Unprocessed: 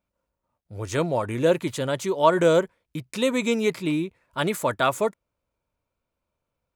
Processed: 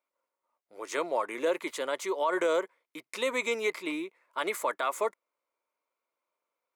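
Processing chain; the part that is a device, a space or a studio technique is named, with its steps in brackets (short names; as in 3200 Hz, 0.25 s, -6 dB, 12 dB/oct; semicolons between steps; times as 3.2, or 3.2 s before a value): laptop speaker (HPF 340 Hz 24 dB/oct; bell 1100 Hz +7 dB 0.49 oct; bell 2100 Hz +9 dB 0.21 oct; limiter -14 dBFS, peak gain reduction 11.5 dB); gain -5 dB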